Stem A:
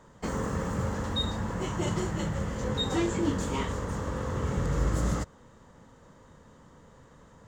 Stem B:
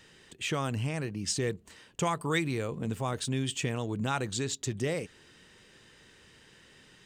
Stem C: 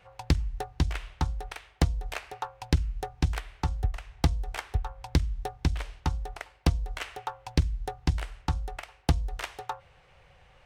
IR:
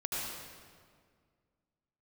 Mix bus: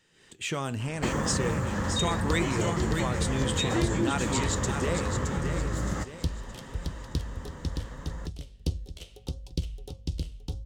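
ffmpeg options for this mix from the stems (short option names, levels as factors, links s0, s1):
-filter_complex "[0:a]equalizer=f=1800:w=4.3:g=5.5,bandreject=f=450:w=12,acompressor=threshold=0.0158:ratio=6,adelay=800,volume=1.41[s0];[1:a]equalizer=f=7300:t=o:w=0.34:g=4,volume=0.473,asplit=2[s1][s2];[s2]volume=0.473[s3];[2:a]aeval=exprs='val(0)+0.00251*(sin(2*PI*50*n/s)+sin(2*PI*2*50*n/s)/2+sin(2*PI*3*50*n/s)/3+sin(2*PI*4*50*n/s)/4+sin(2*PI*5*50*n/s)/5)':c=same,firequalizer=gain_entry='entry(510,0);entry(760,-17);entry(1700,-23);entry(3100,1)':delay=0.05:min_phase=1,adelay=2000,volume=0.237,asplit=3[s4][s5][s6];[s4]atrim=end=4.01,asetpts=PTS-STARTPTS,afade=t=out:st=4.006:d=0.004:c=hsin[s7];[s5]atrim=start=4.01:end=6.07,asetpts=PTS-STARTPTS,volume=0[s8];[s6]atrim=start=6.07,asetpts=PTS-STARTPTS,afade=t=in:d=0.004:c=hsin[s9];[s7][s8][s9]concat=n=3:v=0:a=1,asplit=2[s10][s11];[s11]volume=0.562[s12];[s3][s12]amix=inputs=2:normalize=0,aecho=0:1:619|1238|1857|2476|3095:1|0.39|0.152|0.0593|0.0231[s13];[s0][s1][s10][s13]amix=inputs=4:normalize=0,dynaudnorm=f=120:g=3:m=3.55,flanger=delay=5.7:depth=6.7:regen=79:speed=0.73:shape=sinusoidal"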